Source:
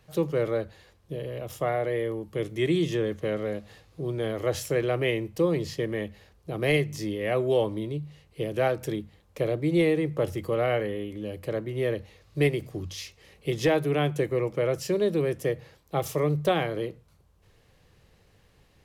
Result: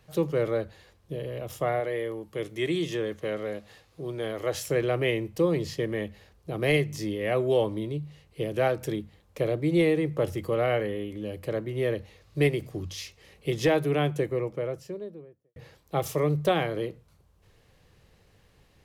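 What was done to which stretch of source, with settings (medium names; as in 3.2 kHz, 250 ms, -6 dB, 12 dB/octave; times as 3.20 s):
1.80–4.67 s: bass shelf 300 Hz -7.5 dB
13.86–15.56 s: studio fade out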